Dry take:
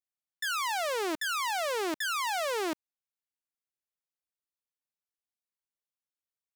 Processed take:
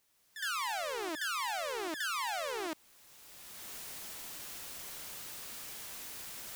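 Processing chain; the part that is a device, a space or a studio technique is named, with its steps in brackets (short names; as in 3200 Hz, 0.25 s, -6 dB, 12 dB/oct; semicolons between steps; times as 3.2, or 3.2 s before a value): low shelf 350 Hz -5.5 dB; reverse echo 63 ms -7.5 dB; gate -29 dBFS, range -13 dB; cheap recorder with automatic gain (white noise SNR 29 dB; recorder AGC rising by 21 dB/s)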